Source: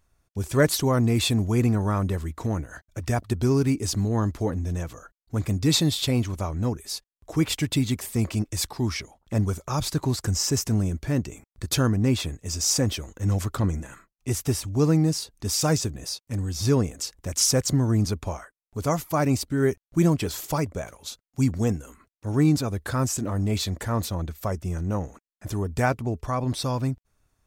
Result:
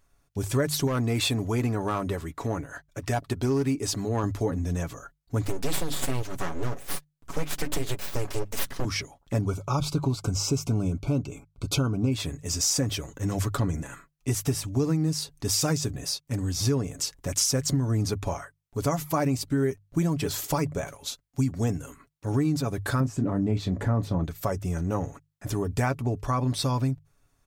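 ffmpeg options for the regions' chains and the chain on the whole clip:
-filter_complex "[0:a]asettb=1/sr,asplit=3[s0][s1][s2];[s0]atrim=end=0.874[s3];[s1]atrim=start=0.87:end=4.24,asetpts=PTS-STARTPTS,afade=t=in:d=0.004:c=qsin,afade=t=out:st=3.366:d=0.004:c=qsin,bass=f=250:g=-6,treble=f=4000:g=-3,asoftclip=type=hard:threshold=0.112[s4];[s2]atrim=start=4.236[s5];[s3][s4]acrossfade=d=0.004:c1=hsin:c2=qsin[s6];[s6][s5]acrossfade=d=0.004:c1=qsin:c2=hsin,asettb=1/sr,asplit=3[s7][s8][s9];[s7]atrim=end=5.444[s10];[s8]atrim=start=5.44:end=8.85,asetpts=PTS-STARTPTS,afade=t=in:d=0.004:c=qsin,afade=t=out:st=3.406:d=0.004:c=qsin,bandreject=f=50:t=h:w=6,bandreject=f=100:t=h:w=6,bandreject=f=150:t=h:w=6,aecho=1:1:5.4:0.58,atrim=end_sample=150381,aeval=exprs='abs(val(0))':c=same[s11];[s9]atrim=start=8.846[s12];[s10][s11]acrossfade=d=0.004:c1=hsin:c2=qsin[s13];[s13][s12]acrossfade=d=0.004:c1=qsin:c2=hsin,asettb=1/sr,asplit=3[s14][s15][s16];[s14]atrim=end=9.414[s17];[s15]atrim=start=9.41:end=12.12,asetpts=PTS-STARTPTS,afade=t=in:d=0.004:c=qsin,afade=t=out:st=2.706:d=0.004:c=qsin,asuperstop=centerf=1800:order=20:qfactor=3.1,aemphasis=mode=reproduction:type=cd[s18];[s16]atrim=start=12.116[s19];[s17][s18]acrossfade=d=0.004:c1=hsin:c2=qsin[s20];[s20][s19]acrossfade=d=0.004:c1=qsin:c2=hsin,asettb=1/sr,asplit=3[s21][s22][s23];[s21]atrim=end=23.004[s24];[s22]atrim=start=23:end=24.24,asetpts=PTS-STARTPTS,afade=t=in:d=0.004:c=qsin,afade=t=out:st=1.236:d=0.004:c=qsin,lowpass=f=1600:p=1,equalizer=f=190:t=o:w=2.2:g=7.5,asplit=2[s25][s26];[s26]adelay=27,volume=0.224[s27];[s25][s27]amix=inputs=2:normalize=0,atrim=end_sample=54684[s28];[s23]atrim=start=24.236[s29];[s24][s28]acrossfade=d=0.004:c1=hsin:c2=qsin[s30];[s30][s29]acrossfade=d=0.004:c1=qsin:c2=hsin,bandreject=f=50:t=h:w=6,bandreject=f=100:t=h:w=6,bandreject=f=150:t=h:w=6,aecho=1:1:7.1:0.41,acompressor=threshold=0.0708:ratio=6,volume=1.19"

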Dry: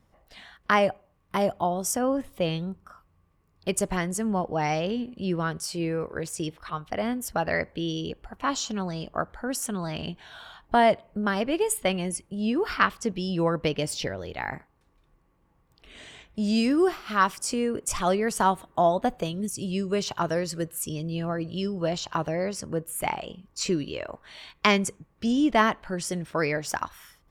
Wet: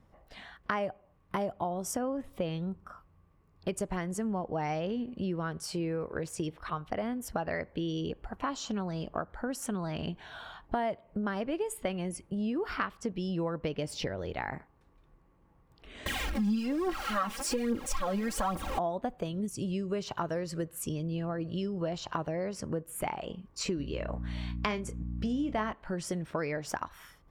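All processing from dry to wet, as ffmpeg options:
-filter_complex "[0:a]asettb=1/sr,asplit=3[s0][s1][s2];[s0]atrim=end=16.064[s3];[s1]atrim=start=16.06:end=18.79,asetpts=PTS-STARTPTS,afade=t=in:d=0.004:c=qsin,afade=t=out:st=2.726:d=0.004:c=qsin,aeval=exprs='val(0)+0.5*0.0398*sgn(val(0))':c=same,aphaser=in_gain=1:out_gain=1:delay=4.9:decay=0.66:speed=1.2:type=triangular,aecho=1:1:3.7:0.73,atrim=end_sample=120393[s4];[s2]atrim=start=18.786[s5];[s3][s4]acrossfade=d=0.004:c1=hsin:c2=qsin[s6];[s6][s5]acrossfade=d=0.004:c1=qsin:c2=hsin,asettb=1/sr,asplit=3[s7][s8][s9];[s7]atrim=end=23.774[s10];[s8]atrim=start=23.77:end=25.73,asetpts=PTS-STARTPTS,afade=t=in:d=0.004:c=qsin,afade=t=out:st=1.956:d=0.004:c=qsin,aeval=exprs='val(0)+0.0178*(sin(2*PI*60*n/s)+sin(2*PI*2*60*n/s)/2+sin(2*PI*3*60*n/s)/3+sin(2*PI*4*60*n/s)/4+sin(2*PI*5*60*n/s)/5)':c=same,asplit=2[s11][s12];[s12]adelay=28,volume=0.299[s13];[s11][s13]amix=inputs=2:normalize=0,atrim=end_sample=86436[s14];[s9]atrim=start=25.726[s15];[s10][s14]acrossfade=d=0.004:c1=hsin:c2=qsin[s16];[s16][s15]acrossfade=d=0.004:c1=qsin:c2=hsin,highshelf=f=2800:g=-9,acompressor=threshold=0.0224:ratio=4,volume=1.26"

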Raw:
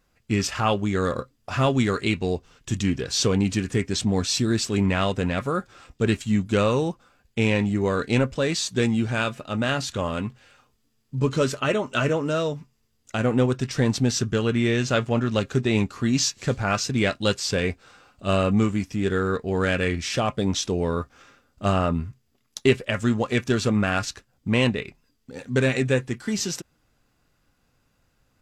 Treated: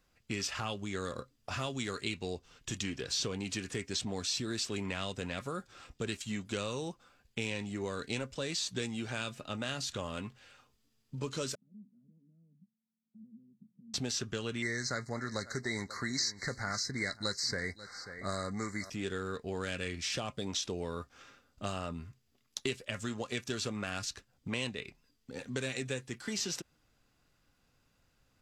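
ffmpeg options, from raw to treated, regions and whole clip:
-filter_complex "[0:a]asettb=1/sr,asplit=3[s0][s1][s2];[s0]atrim=end=11.554[s3];[s1]atrim=start=11.55:end=13.94,asetpts=PTS-STARTPTS,afade=t=in:d=0.004:c=qsin,afade=t=out:st=2.386:d=0.004:c=qsin,acompressor=threshold=0.01:ratio=3:attack=3.2:release=140:knee=1:detection=peak,asuperpass=centerf=200:order=4:qfactor=4.8[s4];[s2]atrim=start=13.936[s5];[s3][s4]acrossfade=d=0.004:c1=hsin:c2=qsin[s6];[s6][s5]acrossfade=d=0.004:c1=qsin:c2=hsin,asettb=1/sr,asplit=3[s7][s8][s9];[s7]atrim=end=14.624[s10];[s8]atrim=start=14.62:end=18.9,asetpts=PTS-STARTPTS,afade=t=in:d=0.004:c=qsin,afade=t=out:st=4.276:d=0.004:c=qsin,asuperstop=centerf=2900:order=20:qfactor=1.6,equalizer=f=2400:t=o:w=1.5:g=15,aecho=1:1:537:0.0841,atrim=end_sample=188748[s11];[s9]atrim=start=18.896[s12];[s10][s11]acrossfade=d=0.004:c1=hsin:c2=qsin[s13];[s13][s12]acrossfade=d=0.004:c1=qsin:c2=hsin,equalizer=f=4000:t=o:w=1.8:g=3.5,acrossover=split=340|4100[s14][s15][s16];[s14]acompressor=threshold=0.0158:ratio=4[s17];[s15]acompressor=threshold=0.0224:ratio=4[s18];[s16]acompressor=threshold=0.0282:ratio=4[s19];[s17][s18][s19]amix=inputs=3:normalize=0,volume=0.531"

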